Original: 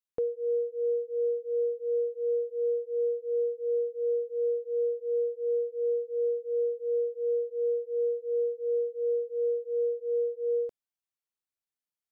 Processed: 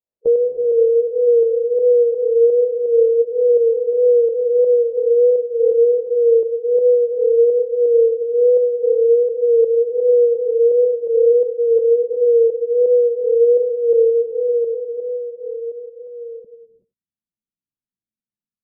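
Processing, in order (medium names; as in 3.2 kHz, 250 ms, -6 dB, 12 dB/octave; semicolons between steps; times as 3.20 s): harmonic-percussive split harmonic +4 dB; wow and flutter 66 cents; low-pass sweep 550 Hz -> 220 Hz, 8.76–10.53 s; tempo 0.65×; volume shaper 84 bpm, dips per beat 2, -7 dB, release 137 ms; delay 91 ms -19 dB; reverberation, pre-delay 3 ms, DRR 7 dB; trim +4 dB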